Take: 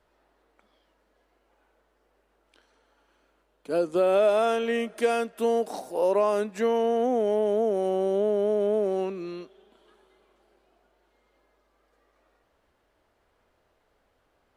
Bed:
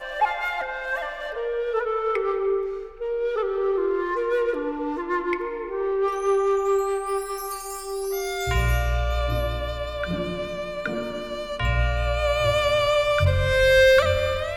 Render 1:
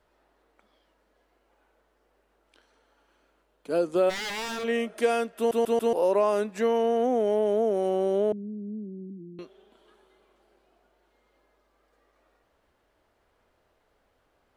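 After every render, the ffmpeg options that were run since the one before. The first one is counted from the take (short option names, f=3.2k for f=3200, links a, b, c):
-filter_complex "[0:a]asplit=3[a][b][c];[a]afade=t=out:st=4.09:d=0.02[d];[b]aeval=exprs='0.0398*(abs(mod(val(0)/0.0398+3,4)-2)-1)':c=same,afade=t=in:st=4.09:d=0.02,afade=t=out:st=4.63:d=0.02[e];[c]afade=t=in:st=4.63:d=0.02[f];[d][e][f]amix=inputs=3:normalize=0,asettb=1/sr,asplit=3[g][h][i];[g]atrim=end=8.324[j];[h]atrim=start=8.32:end=9.39,asetpts=PTS-STARTPTS,afade=t=in:d=0.004:c=qsin,afade=t=out:st=1.066:d=0.004:c=qsin,asuperpass=centerf=210:order=8:qfactor=1.3[k];[i]atrim=start=9.386[l];[j][k]acrossfade=d=0.004:c1=hsin:c2=qsin[m];[m][l]acrossfade=d=0.004:c1=qsin:c2=hsin,asplit=5[n][o][p][q][r];[n]atrim=end=5.512[s];[o]atrim=start=5.368:end=5.512[t];[p]atrim=start=5.368:end=5.512[u];[q]atrim=start=5.368:end=5.512[v];[r]atrim=start=5.928[w];[s][t]acrossfade=d=0.004:c1=hsin:c2=hsin[x];[x][u]acrossfade=d=0.004:c1=hsin:c2=hsin[y];[y][v]acrossfade=d=0.004:c1=hsin:c2=hsin[z];[z][w]acrossfade=d=0.004:c1=hsin:c2=hsin"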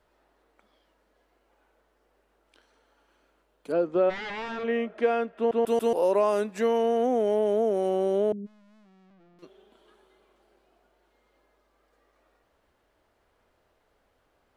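-filter_complex "[0:a]asettb=1/sr,asplit=3[a][b][c];[a]atrim=end=3.724[d];[b]atrim=start=3.72:end=5.67,asetpts=PTS-STARTPTS,afade=t=in:d=0.004:c=qsin,afade=t=out:st=1.946:d=0.004:c=qsin,lowpass=2.3k[e];[c]atrim=start=5.666[f];[d][e]acrossfade=d=0.004:c1=hsin:c2=qsin[g];[g][f]acrossfade=d=0.004:c1=qsin:c2=hsin,asplit=3[h][i][j];[h]afade=t=out:st=8.45:d=0.02[k];[i]aeval=exprs='(tanh(794*val(0)+0.35)-tanh(0.35))/794':c=same,afade=t=in:st=8.45:d=0.02,afade=t=out:st=9.42:d=0.02[l];[j]afade=t=in:st=9.42:d=0.02[m];[k][l][m]amix=inputs=3:normalize=0"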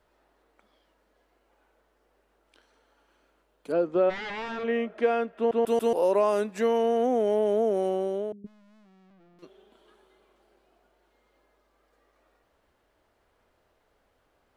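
-filter_complex "[0:a]asplit=2[a][b];[a]atrim=end=8.44,asetpts=PTS-STARTPTS,afade=t=out:st=7.8:d=0.64:silence=0.177828[c];[b]atrim=start=8.44,asetpts=PTS-STARTPTS,afade=t=in:d=0.004:c=hsin:silence=0.177828[d];[c][d]concat=n=2:v=0:a=1"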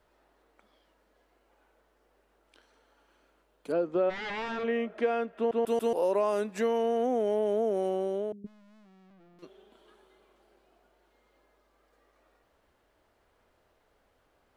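-af "acompressor=threshold=-30dB:ratio=1.5"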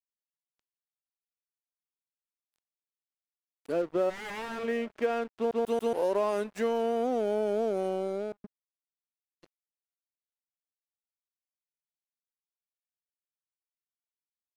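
-af "aeval=exprs='sgn(val(0))*max(abs(val(0))-0.00596,0)':c=same"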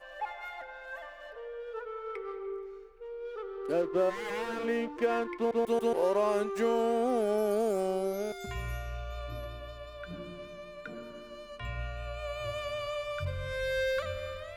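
-filter_complex "[1:a]volume=-15dB[a];[0:a][a]amix=inputs=2:normalize=0"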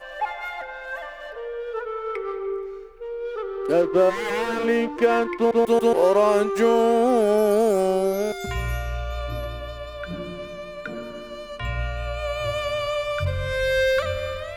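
-af "volume=10dB"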